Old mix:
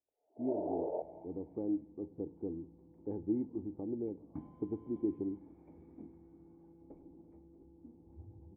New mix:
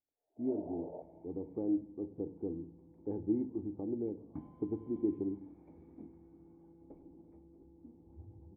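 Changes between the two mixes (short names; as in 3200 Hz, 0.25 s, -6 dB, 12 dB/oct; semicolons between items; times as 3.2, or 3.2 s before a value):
speech: send +7.5 dB; first sound -9.0 dB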